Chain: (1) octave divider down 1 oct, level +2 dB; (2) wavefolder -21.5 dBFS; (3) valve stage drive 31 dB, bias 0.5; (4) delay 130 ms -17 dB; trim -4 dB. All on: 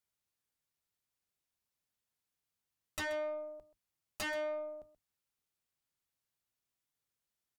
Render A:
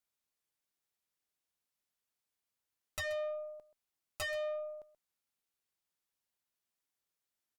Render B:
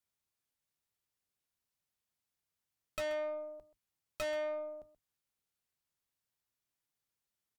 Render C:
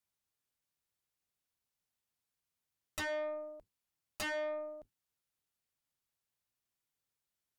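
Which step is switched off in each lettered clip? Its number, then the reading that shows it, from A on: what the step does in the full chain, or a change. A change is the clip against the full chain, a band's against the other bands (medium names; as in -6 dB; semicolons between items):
1, 1 kHz band -4.5 dB; 2, 500 Hz band +4.5 dB; 4, momentary loudness spread change +1 LU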